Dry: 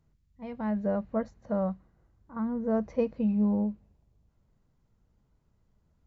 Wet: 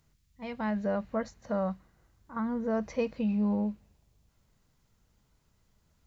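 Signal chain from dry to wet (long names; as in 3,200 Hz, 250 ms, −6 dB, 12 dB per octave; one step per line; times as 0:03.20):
tilt shelving filter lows −7 dB, about 1,400 Hz
in parallel at 0 dB: brickwall limiter −31.5 dBFS, peak gain reduction 9.5 dB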